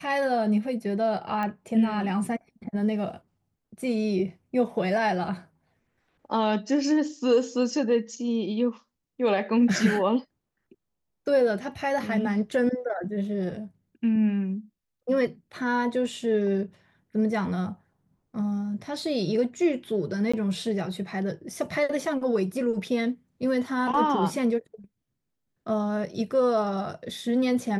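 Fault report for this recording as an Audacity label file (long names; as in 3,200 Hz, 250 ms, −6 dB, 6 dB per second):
1.430000	1.430000	click −19 dBFS
20.320000	20.340000	drop-out 15 ms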